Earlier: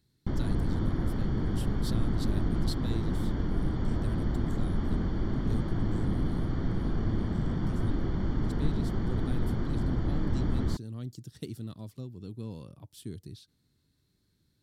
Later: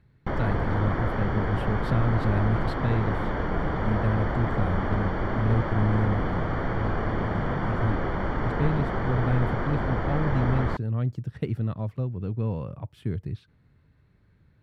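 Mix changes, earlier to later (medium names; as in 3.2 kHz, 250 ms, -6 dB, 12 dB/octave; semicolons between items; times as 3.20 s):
speech: add tone controls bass +14 dB, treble -14 dB; master: add high-order bell 1.1 kHz +14 dB 2.9 oct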